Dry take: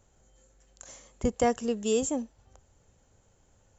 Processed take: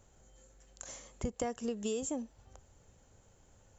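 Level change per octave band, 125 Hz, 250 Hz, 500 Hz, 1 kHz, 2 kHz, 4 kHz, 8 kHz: -5.5 dB, -8.0 dB, -9.5 dB, -12.0 dB, -10.0 dB, -8.0 dB, no reading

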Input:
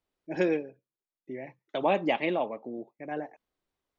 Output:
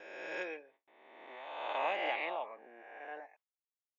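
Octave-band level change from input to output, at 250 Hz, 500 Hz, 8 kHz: -21.5 dB, -11.0 dB, no reading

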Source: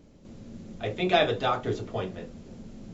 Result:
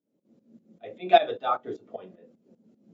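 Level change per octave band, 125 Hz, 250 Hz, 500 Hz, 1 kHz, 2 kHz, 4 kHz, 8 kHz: under -15 dB, -7.5 dB, +1.0 dB, +4.5 dB, -4.0 dB, -4.0 dB, no reading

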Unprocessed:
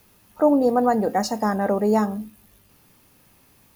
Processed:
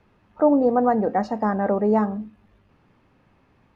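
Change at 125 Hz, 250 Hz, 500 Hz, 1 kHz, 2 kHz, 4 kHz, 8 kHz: 0.0 dB, 0.0 dB, 0.0 dB, 0.0 dB, -1.5 dB, under -10 dB, under -20 dB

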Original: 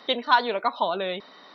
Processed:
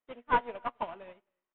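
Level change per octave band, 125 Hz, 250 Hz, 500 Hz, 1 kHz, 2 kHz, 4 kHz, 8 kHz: -5.5 dB, -10.5 dB, -11.5 dB, -8.5 dB, -10.0 dB, -22.5 dB, no reading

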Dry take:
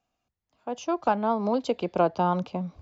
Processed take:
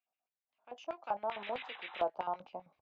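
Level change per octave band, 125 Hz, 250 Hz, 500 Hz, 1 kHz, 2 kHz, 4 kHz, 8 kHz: under -25 dB, -25.0 dB, -12.5 dB, -11.0 dB, -6.0 dB, -5.5 dB, no reading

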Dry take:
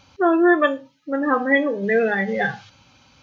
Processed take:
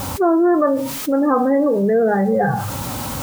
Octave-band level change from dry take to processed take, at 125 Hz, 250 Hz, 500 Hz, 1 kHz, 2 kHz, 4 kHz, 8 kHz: +11.5 dB, +4.5 dB, +4.0 dB, +3.5 dB, -8.0 dB, +3.0 dB, no reading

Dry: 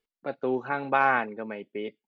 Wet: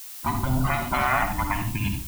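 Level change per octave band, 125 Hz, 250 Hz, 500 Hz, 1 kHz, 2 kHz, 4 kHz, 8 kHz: +19.5 dB, +5.0 dB, -4.0 dB, +2.0 dB, +0.5 dB, +10.5 dB, no reading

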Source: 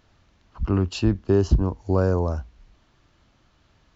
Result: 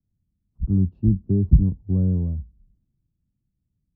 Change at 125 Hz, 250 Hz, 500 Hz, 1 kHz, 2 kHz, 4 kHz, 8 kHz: +3.5 dB, +1.5 dB, -12.5 dB, under -25 dB, under -35 dB, under -40 dB, no reading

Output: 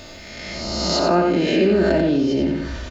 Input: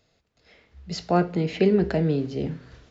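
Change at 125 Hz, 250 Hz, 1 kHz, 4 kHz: 0.0 dB, +6.5 dB, +6.5 dB, +13.5 dB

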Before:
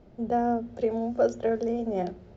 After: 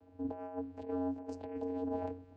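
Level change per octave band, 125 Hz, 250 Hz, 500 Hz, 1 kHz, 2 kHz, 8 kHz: -8.0 dB, -8.5 dB, -14.0 dB, -14.0 dB, -17.0 dB, no reading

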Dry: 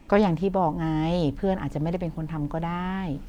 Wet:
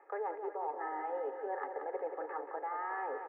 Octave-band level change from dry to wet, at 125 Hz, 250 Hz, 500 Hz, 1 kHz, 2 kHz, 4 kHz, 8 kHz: under -40 dB, -27.0 dB, -11.5 dB, -7.5 dB, -8.0 dB, under -35 dB, no reading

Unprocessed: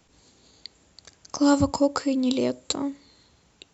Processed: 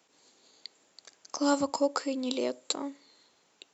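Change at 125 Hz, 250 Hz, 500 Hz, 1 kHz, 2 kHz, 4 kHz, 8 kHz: -22.0 dB, -9.0 dB, -4.5 dB, -3.5 dB, -3.5 dB, -3.5 dB, no reading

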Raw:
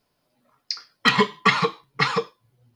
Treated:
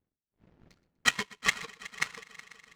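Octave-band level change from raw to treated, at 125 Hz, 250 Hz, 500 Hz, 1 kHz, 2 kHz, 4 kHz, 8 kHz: -19.5 dB, -19.0 dB, -22.0 dB, -17.0 dB, -7.5 dB, -9.0 dB, +3.5 dB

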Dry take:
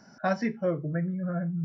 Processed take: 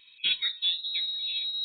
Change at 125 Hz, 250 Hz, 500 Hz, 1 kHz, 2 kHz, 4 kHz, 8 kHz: under -35 dB, under -35 dB, under -35 dB, under -20 dB, 0.0 dB, +30.0 dB, no reading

